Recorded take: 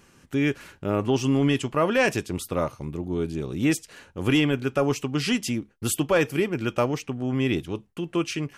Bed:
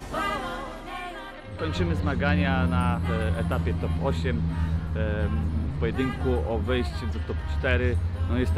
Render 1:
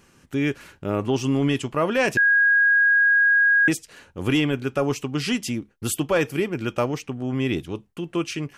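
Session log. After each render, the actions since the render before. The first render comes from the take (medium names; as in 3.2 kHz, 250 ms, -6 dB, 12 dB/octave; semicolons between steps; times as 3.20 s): 2.17–3.68 s: bleep 1.64 kHz -14 dBFS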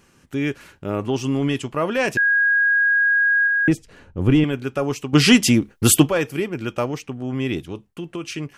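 3.47–4.44 s: tilt EQ -3 dB/octave; 5.13–6.09 s: gain +11.5 dB; 7.67–8.26 s: compression, threshold -24 dBFS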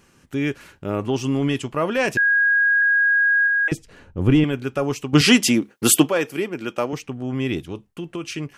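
2.82–3.72 s: steep high-pass 550 Hz; 5.21–6.93 s: high-pass 210 Hz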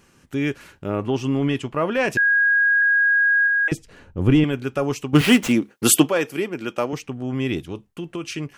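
0.88–2.10 s: tone controls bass 0 dB, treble -7 dB; 5.13–5.53 s: median filter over 9 samples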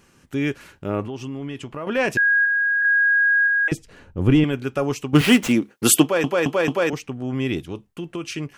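1.06–1.87 s: compression 3:1, threshold -30 dBFS; 2.45–2.85 s: distance through air 390 m; 6.02 s: stutter in place 0.22 s, 4 plays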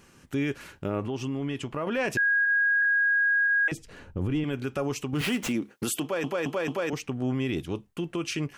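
compression 2:1, threshold -23 dBFS, peak gain reduction 8 dB; peak limiter -20 dBFS, peak gain reduction 10.5 dB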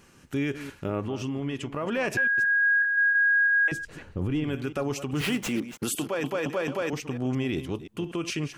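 chunks repeated in reverse 175 ms, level -12 dB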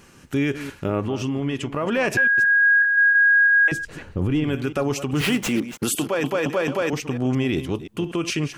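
trim +6 dB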